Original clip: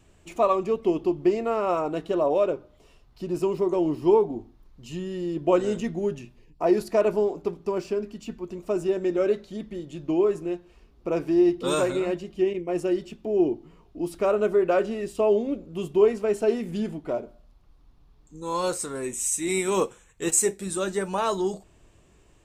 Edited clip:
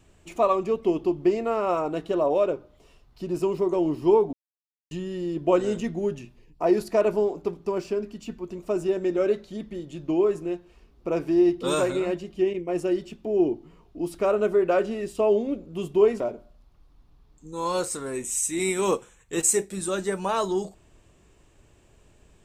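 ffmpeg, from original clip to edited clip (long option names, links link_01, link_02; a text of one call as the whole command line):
ffmpeg -i in.wav -filter_complex "[0:a]asplit=4[link_01][link_02][link_03][link_04];[link_01]atrim=end=4.33,asetpts=PTS-STARTPTS,afade=type=out:start_time=4.326:duration=0.004:curve=hsin[link_05];[link_02]atrim=start=4.33:end=4.91,asetpts=PTS-STARTPTS,volume=0[link_06];[link_03]atrim=start=4.91:end=16.202,asetpts=PTS-STARTPTS,afade=type=in:duration=0.004:curve=hsin[link_07];[link_04]atrim=start=17.088[link_08];[link_05][link_06][link_07]concat=n=3:v=0:a=1[link_09];[link_09][link_08]acrossfade=duration=0.004:curve1=hsin:curve2=hsin" out.wav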